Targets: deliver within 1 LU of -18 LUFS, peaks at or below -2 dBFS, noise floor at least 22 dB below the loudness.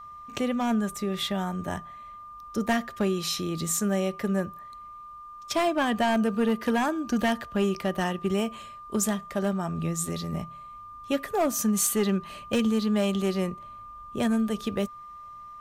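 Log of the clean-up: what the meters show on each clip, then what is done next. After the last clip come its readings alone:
clipped 0.8%; flat tops at -18.0 dBFS; steady tone 1200 Hz; tone level -41 dBFS; loudness -27.5 LUFS; peak -18.0 dBFS; loudness target -18.0 LUFS
-> clip repair -18 dBFS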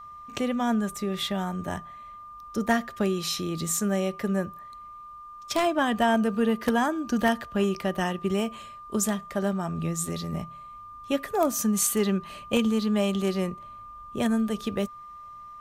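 clipped 0.0%; steady tone 1200 Hz; tone level -41 dBFS
-> notch 1200 Hz, Q 30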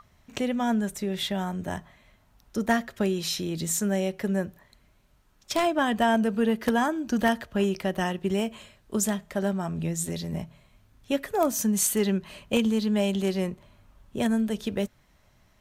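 steady tone none; loudness -27.0 LUFS; peak -9.0 dBFS; loudness target -18.0 LUFS
-> gain +9 dB; limiter -2 dBFS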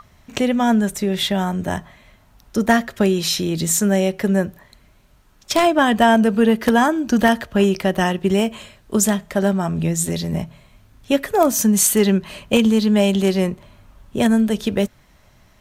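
loudness -18.5 LUFS; peak -2.0 dBFS; noise floor -53 dBFS

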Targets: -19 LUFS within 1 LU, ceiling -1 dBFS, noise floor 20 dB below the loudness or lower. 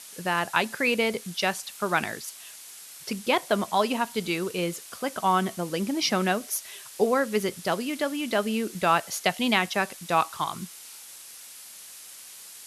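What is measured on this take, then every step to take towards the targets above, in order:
noise floor -45 dBFS; noise floor target -47 dBFS; loudness -26.5 LUFS; peak -7.0 dBFS; loudness target -19.0 LUFS
-> denoiser 6 dB, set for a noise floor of -45 dBFS; gain +7.5 dB; limiter -1 dBFS

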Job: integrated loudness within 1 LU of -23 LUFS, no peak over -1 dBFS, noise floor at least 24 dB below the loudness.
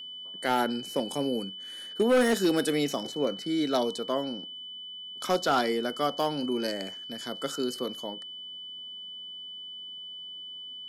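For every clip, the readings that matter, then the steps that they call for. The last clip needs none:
clipped 0.5%; flat tops at -17.5 dBFS; steady tone 3000 Hz; tone level -39 dBFS; loudness -30.0 LUFS; peak -17.5 dBFS; loudness target -23.0 LUFS
-> clip repair -17.5 dBFS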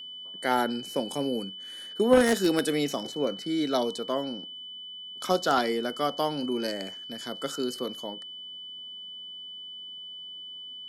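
clipped 0.0%; steady tone 3000 Hz; tone level -39 dBFS
-> notch 3000 Hz, Q 30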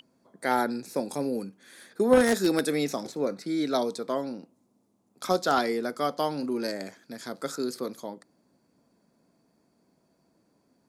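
steady tone none; loudness -28.0 LUFS; peak -8.0 dBFS; loudness target -23.0 LUFS
-> gain +5 dB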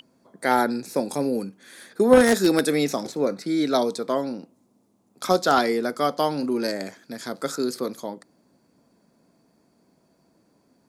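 loudness -23.0 LUFS; peak -3.0 dBFS; noise floor -65 dBFS

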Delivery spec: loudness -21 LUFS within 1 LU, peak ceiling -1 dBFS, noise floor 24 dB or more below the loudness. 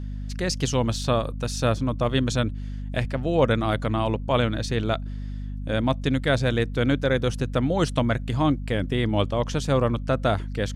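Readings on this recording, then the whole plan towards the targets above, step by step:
hum 50 Hz; harmonics up to 250 Hz; hum level -29 dBFS; loudness -24.5 LUFS; peak -7.0 dBFS; loudness target -21.0 LUFS
-> de-hum 50 Hz, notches 5; gain +3.5 dB

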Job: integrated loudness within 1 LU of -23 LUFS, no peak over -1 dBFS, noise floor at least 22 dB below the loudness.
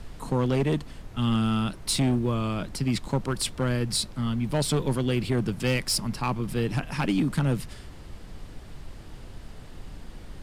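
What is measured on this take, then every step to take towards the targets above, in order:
clipped 1.3%; flat tops at -18.0 dBFS; noise floor -44 dBFS; noise floor target -49 dBFS; loudness -27.0 LUFS; peak -18.0 dBFS; loudness target -23.0 LUFS
-> clip repair -18 dBFS; noise print and reduce 6 dB; gain +4 dB

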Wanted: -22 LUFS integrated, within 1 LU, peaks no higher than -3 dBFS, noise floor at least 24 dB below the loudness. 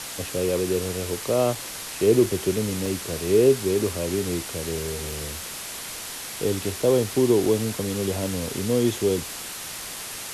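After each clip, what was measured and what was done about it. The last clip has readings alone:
dropouts 6; longest dropout 2.5 ms; noise floor -35 dBFS; noise floor target -49 dBFS; loudness -24.5 LUFS; peak -7.0 dBFS; loudness target -22.0 LUFS
-> interpolate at 1.55/2.26/2.86/5.12/6.82/7.46, 2.5 ms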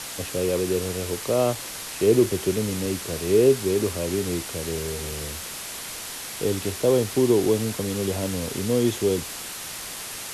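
dropouts 0; noise floor -35 dBFS; noise floor target -49 dBFS
-> noise print and reduce 14 dB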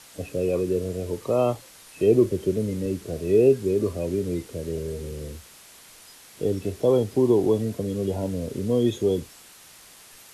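noise floor -49 dBFS; loudness -24.5 LUFS; peak -7.5 dBFS; loudness target -22.0 LUFS
-> gain +2.5 dB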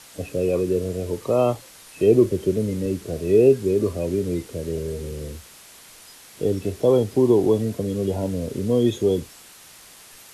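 loudness -22.0 LUFS; peak -5.0 dBFS; noise floor -47 dBFS

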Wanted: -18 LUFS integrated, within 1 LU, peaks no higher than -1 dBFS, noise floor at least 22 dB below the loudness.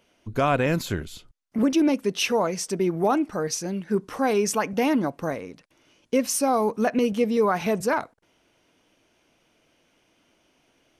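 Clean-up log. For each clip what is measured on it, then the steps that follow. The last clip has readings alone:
loudness -24.5 LUFS; peak -12.0 dBFS; loudness target -18.0 LUFS
-> gain +6.5 dB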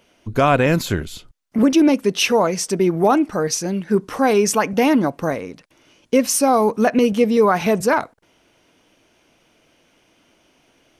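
loudness -18.0 LUFS; peak -5.5 dBFS; noise floor -60 dBFS

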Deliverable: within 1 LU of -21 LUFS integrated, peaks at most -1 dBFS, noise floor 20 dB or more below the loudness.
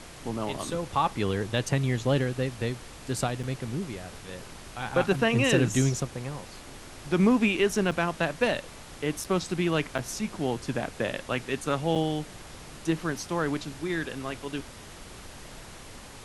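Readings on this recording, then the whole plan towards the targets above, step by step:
dropouts 5; longest dropout 5.8 ms; noise floor -45 dBFS; noise floor target -49 dBFS; loudness -28.5 LUFS; peak -9.5 dBFS; loudness target -21.0 LUFS
-> interpolate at 3.43/7.91/9.24/9.98/11.95, 5.8 ms; noise print and reduce 6 dB; gain +7.5 dB

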